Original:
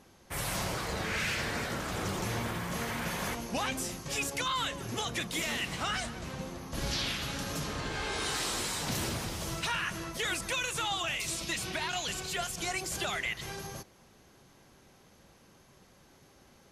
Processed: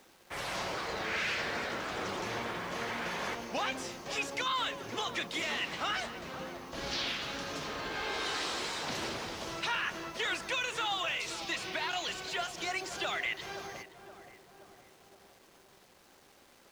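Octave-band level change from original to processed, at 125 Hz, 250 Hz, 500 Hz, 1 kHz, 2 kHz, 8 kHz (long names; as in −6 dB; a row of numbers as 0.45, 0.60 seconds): −10.5, −4.5, −0.5, 0.0, 0.0, −7.5 decibels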